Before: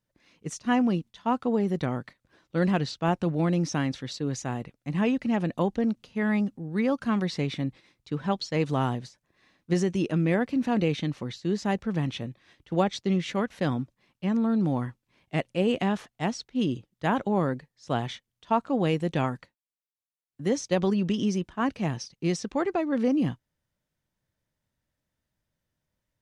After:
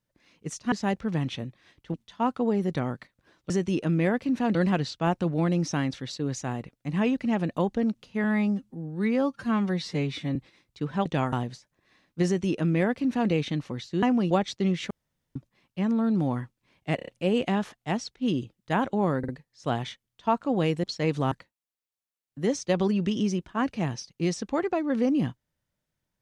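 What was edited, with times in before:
0.72–1 swap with 11.54–12.76
6.25–7.66 stretch 1.5×
8.36–8.84 swap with 19.07–19.34
9.77–10.82 copy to 2.56
13.36–13.81 room tone
15.41 stutter 0.03 s, 5 plays
17.52 stutter 0.05 s, 3 plays

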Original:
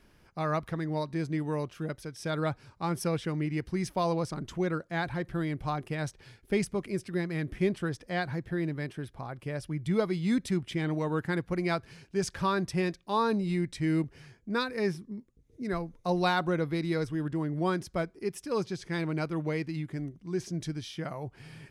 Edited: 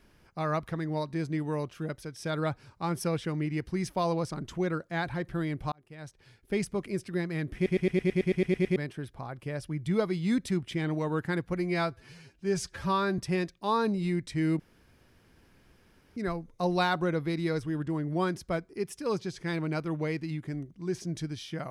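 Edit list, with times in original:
5.72–6.76 fade in
7.55 stutter in place 0.11 s, 11 plays
11.55–12.64 stretch 1.5×
14.05–15.62 room tone

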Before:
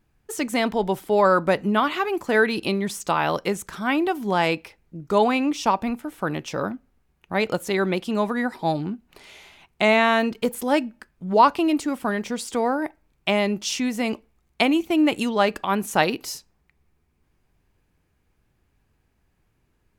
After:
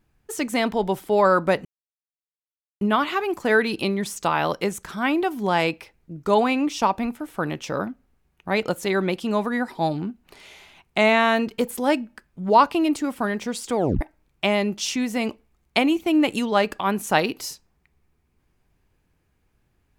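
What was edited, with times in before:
1.65 insert silence 1.16 s
12.6 tape stop 0.25 s

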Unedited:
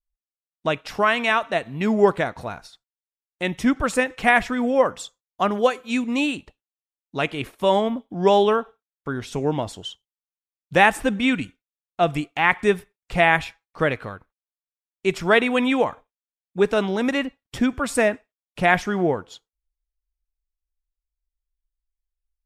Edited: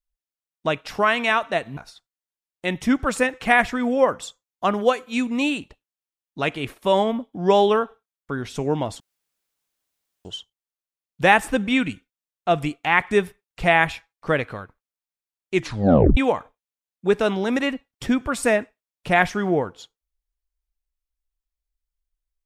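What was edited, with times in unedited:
1.77–2.54 cut
9.77 insert room tone 1.25 s
15.06 tape stop 0.63 s

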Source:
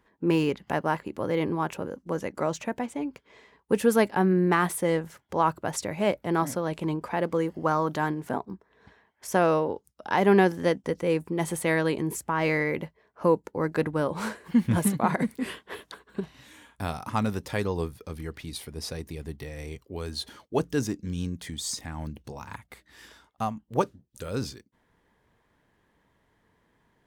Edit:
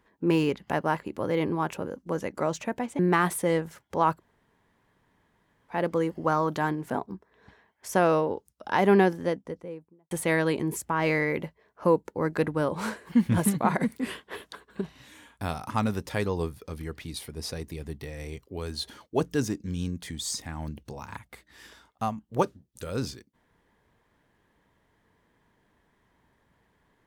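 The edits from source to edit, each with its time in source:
2.99–4.38 cut
5.56–7.12 room tone, crossfade 0.10 s
10.17–11.5 studio fade out

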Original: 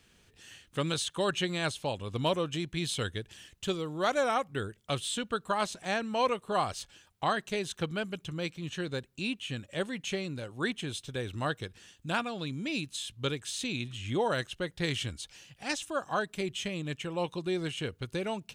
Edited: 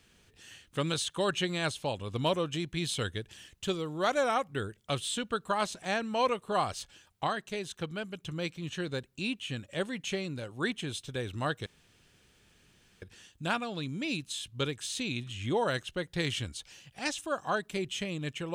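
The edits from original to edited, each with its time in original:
7.27–8.24 gain -3.5 dB
11.66 insert room tone 1.36 s

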